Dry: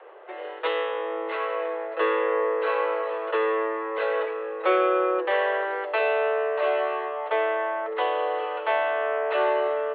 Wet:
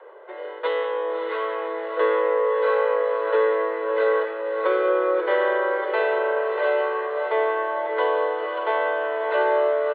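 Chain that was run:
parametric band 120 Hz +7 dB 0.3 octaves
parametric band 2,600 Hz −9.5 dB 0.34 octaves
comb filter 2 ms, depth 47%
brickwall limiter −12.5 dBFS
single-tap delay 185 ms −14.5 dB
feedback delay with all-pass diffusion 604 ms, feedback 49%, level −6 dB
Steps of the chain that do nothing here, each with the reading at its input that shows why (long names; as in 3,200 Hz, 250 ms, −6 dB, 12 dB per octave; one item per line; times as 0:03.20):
parametric band 120 Hz: nothing at its input below 320 Hz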